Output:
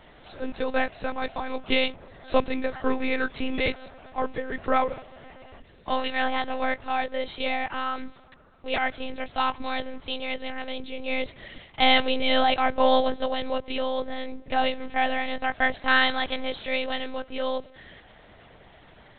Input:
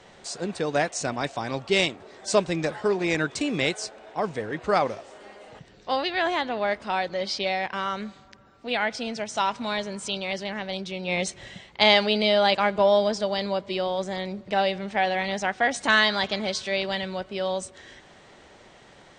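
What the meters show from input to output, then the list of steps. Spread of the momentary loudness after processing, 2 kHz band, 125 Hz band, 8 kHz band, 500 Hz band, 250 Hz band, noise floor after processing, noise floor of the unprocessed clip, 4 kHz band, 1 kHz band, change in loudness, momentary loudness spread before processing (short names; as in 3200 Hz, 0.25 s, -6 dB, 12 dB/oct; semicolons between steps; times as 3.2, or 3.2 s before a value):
13 LU, -0.5 dB, -9.0 dB, under -40 dB, -3.0 dB, -1.0 dB, -53 dBFS, -52 dBFS, -2.0 dB, +0.5 dB, -1.5 dB, 12 LU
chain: monotone LPC vocoder at 8 kHz 260 Hz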